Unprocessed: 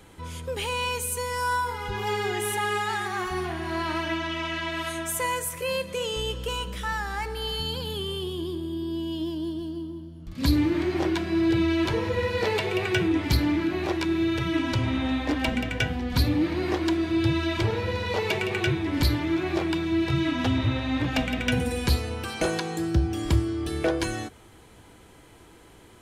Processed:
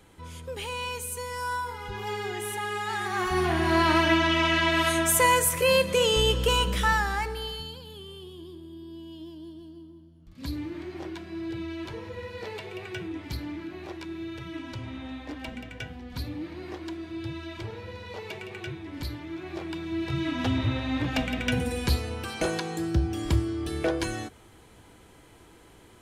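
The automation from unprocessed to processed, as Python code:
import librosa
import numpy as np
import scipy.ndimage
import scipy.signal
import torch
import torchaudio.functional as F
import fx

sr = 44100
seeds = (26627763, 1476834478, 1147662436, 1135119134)

y = fx.gain(x, sr, db=fx.line((2.75, -5.0), (3.58, 7.0), (6.86, 7.0), (7.3, 0.0), (7.81, -12.0), (19.29, -12.0), (20.49, -2.0)))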